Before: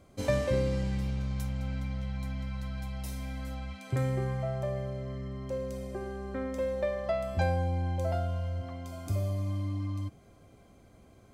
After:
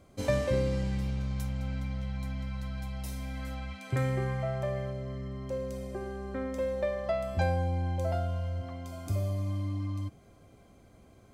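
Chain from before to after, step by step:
0:03.32–0:04.92: dynamic equaliser 1,900 Hz, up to +5 dB, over −52 dBFS, Q 0.81

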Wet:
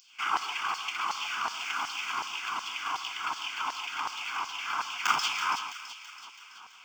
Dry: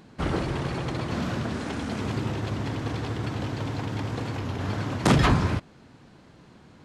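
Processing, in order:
running median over 5 samples
high-pass filter 120 Hz
in parallel at −0.5 dB: downward compressor, threshold −35 dBFS, peak gain reduction 18.5 dB
on the sum: hard clipping −18 dBFS, distortion −14 dB
phaser with its sweep stopped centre 2,700 Hz, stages 8
auto-filter high-pass saw down 2.7 Hz 890–5,200 Hz
on a send: delay with a high-pass on its return 330 ms, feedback 57%, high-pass 2,300 Hz, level −9 dB
on the sum: reverb whose tail is shaped and stops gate 180 ms rising, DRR 9.5 dB
level +2.5 dB

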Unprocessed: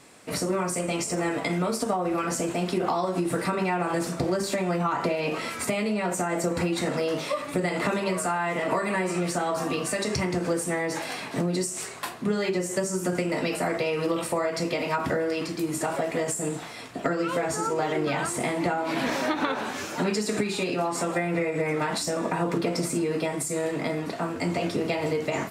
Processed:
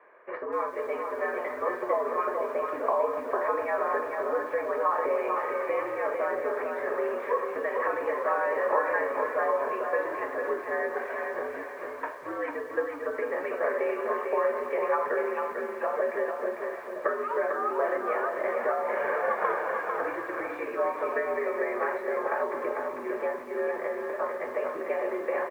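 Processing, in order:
comb filter 1.7 ms, depth 46%
on a send: repeating echo 448 ms, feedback 35%, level −5 dB
on the sum: single-sideband voice off tune −92 Hz 560–2,000 Hz
feedback echo at a low word length 249 ms, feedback 55%, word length 8 bits, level −14 dB

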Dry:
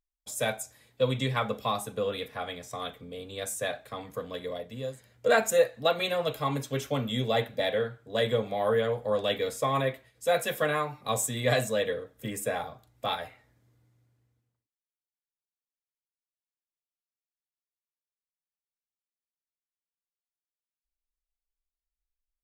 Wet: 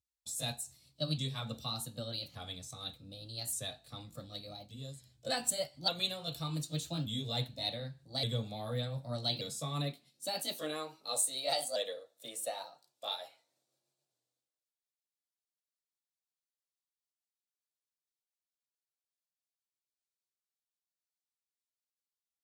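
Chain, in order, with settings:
pitch shifter swept by a sawtooth +3 semitones, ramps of 1,176 ms
octave-band graphic EQ 125/500/1,000/2,000/4,000/8,000 Hz +4/−8/−5/−11/+9/+6 dB
high-pass filter sweep 72 Hz → 570 Hz, 0:08.52–0:11.38
level −6 dB

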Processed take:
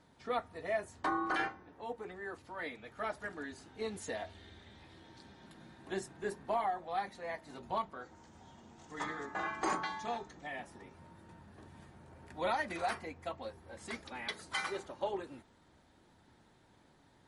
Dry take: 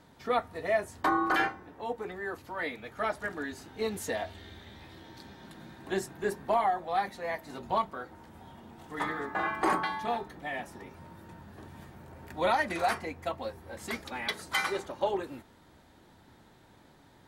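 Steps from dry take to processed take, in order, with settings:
0:08.01–0:10.47: low-pass with resonance 6,700 Hz, resonance Q 4.2
level −6.5 dB
MP3 48 kbit/s 48,000 Hz

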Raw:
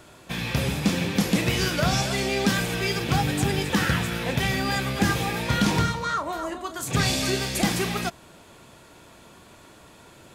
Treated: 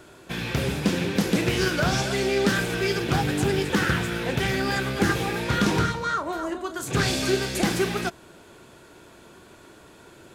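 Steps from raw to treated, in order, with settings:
hollow resonant body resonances 370/1,500 Hz, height 7 dB, ringing for 20 ms
highs frequency-modulated by the lows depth 0.22 ms
level −1.5 dB

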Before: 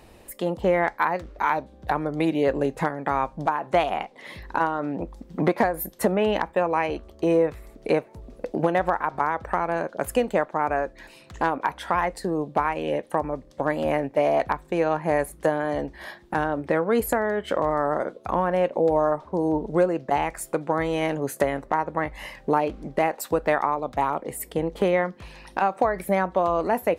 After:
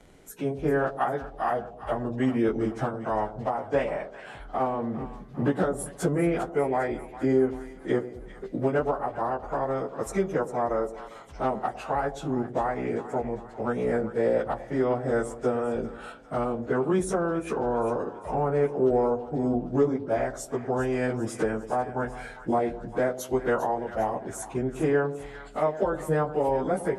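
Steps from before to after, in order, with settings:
phase-vocoder pitch shift without resampling −4 semitones
echo with a time of its own for lows and highs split 770 Hz, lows 103 ms, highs 400 ms, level −13 dB
level −1.5 dB

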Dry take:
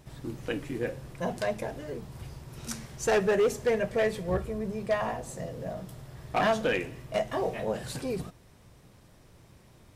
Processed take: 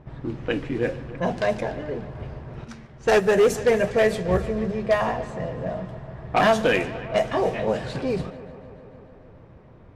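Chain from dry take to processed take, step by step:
echo machine with several playback heads 147 ms, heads first and second, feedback 70%, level −20 dB
low-pass that shuts in the quiet parts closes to 1,400 Hz, open at −22.5 dBFS
0:02.64–0:03.36: expander for the loud parts 1.5 to 1, over −37 dBFS
level +7 dB

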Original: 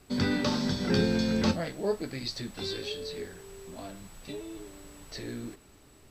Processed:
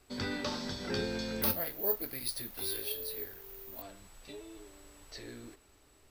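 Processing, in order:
parametric band 170 Hz −9.5 dB 1.4 octaves
0:01.42–0:03.82: bad sample-rate conversion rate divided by 3×, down filtered, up zero stuff
level −5 dB

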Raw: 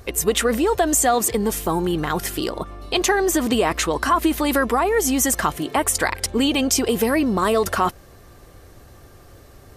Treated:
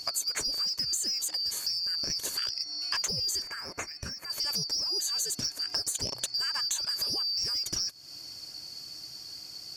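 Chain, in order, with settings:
band-splitting scrambler in four parts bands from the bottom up 2341
soft clipping −12.5 dBFS, distortion −18 dB
parametric band 6,600 Hz +10 dB 0.44 octaves
downward compressor 8 to 1, threshold −29 dBFS, peak gain reduction 17 dB
0:03.42–0:04.30: high shelf with overshoot 2,700 Hz −7.5 dB, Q 3

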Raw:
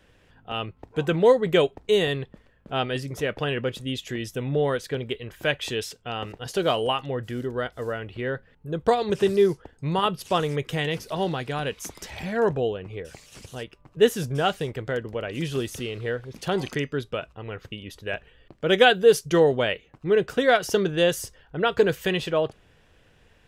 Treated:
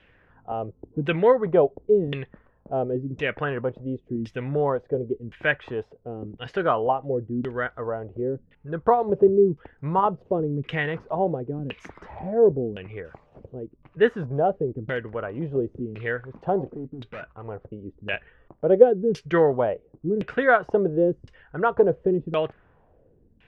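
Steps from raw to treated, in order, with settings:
0:16.64–0:17.45: gain into a clipping stage and back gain 34 dB
auto-filter low-pass saw down 0.94 Hz 220–2,800 Hz
level −1.5 dB

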